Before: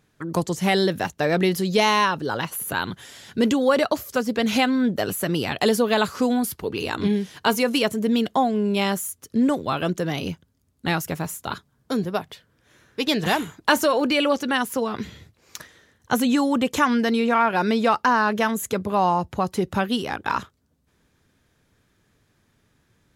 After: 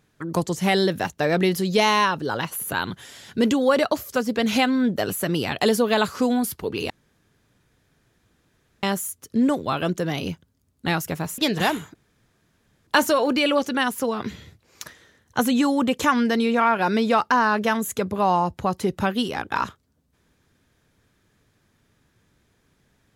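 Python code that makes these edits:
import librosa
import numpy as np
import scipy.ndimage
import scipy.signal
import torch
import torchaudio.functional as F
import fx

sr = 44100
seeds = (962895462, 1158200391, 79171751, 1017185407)

y = fx.edit(x, sr, fx.room_tone_fill(start_s=6.9, length_s=1.93),
    fx.cut(start_s=11.38, length_s=1.66),
    fx.insert_room_tone(at_s=13.61, length_s=0.92), tone=tone)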